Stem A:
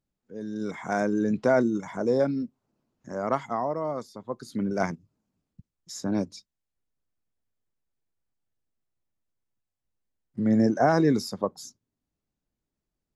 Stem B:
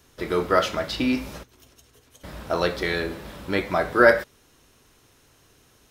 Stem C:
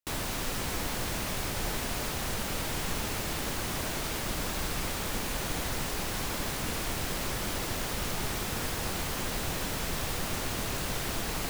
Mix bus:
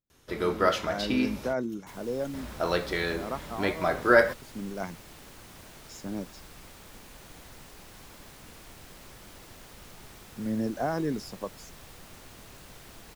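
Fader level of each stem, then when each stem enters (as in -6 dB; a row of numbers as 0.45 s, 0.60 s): -8.5 dB, -4.0 dB, -16.0 dB; 0.00 s, 0.10 s, 1.80 s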